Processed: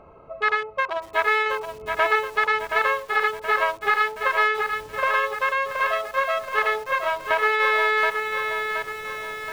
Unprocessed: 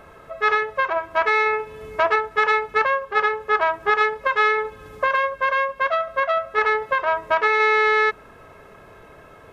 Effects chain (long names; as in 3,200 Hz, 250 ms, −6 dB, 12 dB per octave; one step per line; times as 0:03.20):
adaptive Wiener filter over 25 samples
low-pass filter 1,400 Hz 6 dB per octave
tilt shelving filter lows −8 dB, about 1,100 Hz
in parallel at −1.5 dB: downward compressor 20 to 1, threshold −35 dBFS, peak gain reduction 19 dB
on the sum: feedback echo at a low word length 724 ms, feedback 55%, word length 7 bits, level −5.5 dB